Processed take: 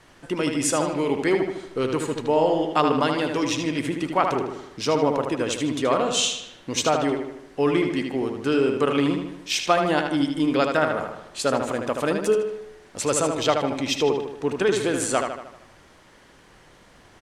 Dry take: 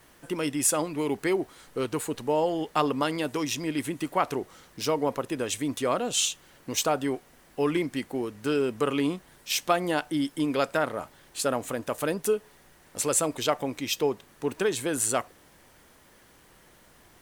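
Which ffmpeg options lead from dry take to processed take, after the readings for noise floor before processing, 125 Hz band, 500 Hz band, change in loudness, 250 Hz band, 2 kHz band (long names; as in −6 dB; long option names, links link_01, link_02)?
−57 dBFS, +5.5 dB, +5.5 dB, +4.5 dB, +5.5 dB, +5.5 dB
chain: -filter_complex "[0:a]lowpass=6700,asplit=2[link_01][link_02];[link_02]adelay=77,lowpass=frequency=4900:poles=1,volume=-5dB,asplit=2[link_03][link_04];[link_04]adelay=77,lowpass=frequency=4900:poles=1,volume=0.54,asplit=2[link_05][link_06];[link_06]adelay=77,lowpass=frequency=4900:poles=1,volume=0.54,asplit=2[link_07][link_08];[link_08]adelay=77,lowpass=frequency=4900:poles=1,volume=0.54,asplit=2[link_09][link_10];[link_10]adelay=77,lowpass=frequency=4900:poles=1,volume=0.54,asplit=2[link_11][link_12];[link_12]adelay=77,lowpass=frequency=4900:poles=1,volume=0.54,asplit=2[link_13][link_14];[link_14]adelay=77,lowpass=frequency=4900:poles=1,volume=0.54[link_15];[link_03][link_05][link_07][link_09][link_11][link_13][link_15]amix=inputs=7:normalize=0[link_16];[link_01][link_16]amix=inputs=2:normalize=0,volume=4dB"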